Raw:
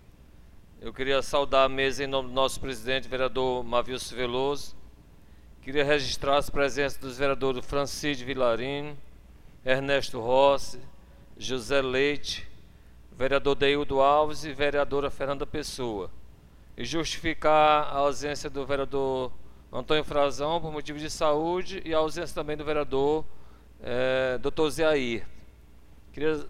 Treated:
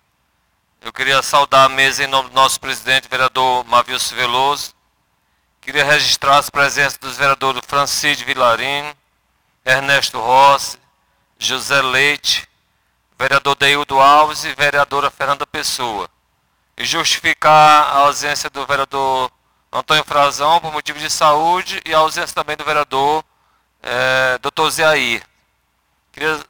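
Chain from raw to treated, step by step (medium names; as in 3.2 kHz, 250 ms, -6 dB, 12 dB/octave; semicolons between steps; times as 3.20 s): high-pass 71 Hz 12 dB/octave; resonant low shelf 620 Hz -12 dB, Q 1.5; waveshaping leveller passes 3; trim +6.5 dB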